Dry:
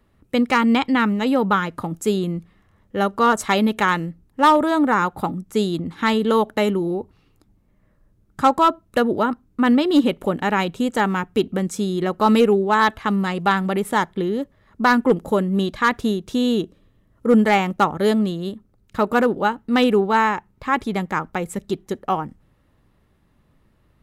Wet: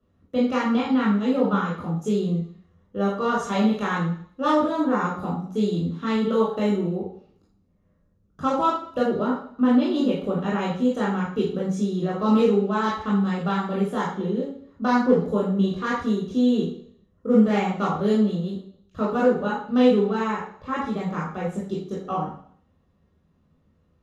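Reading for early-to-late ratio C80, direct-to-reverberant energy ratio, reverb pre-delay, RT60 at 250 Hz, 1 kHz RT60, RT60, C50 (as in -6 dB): 8.0 dB, -5.5 dB, 17 ms, 0.60 s, 0.55 s, 0.55 s, 3.5 dB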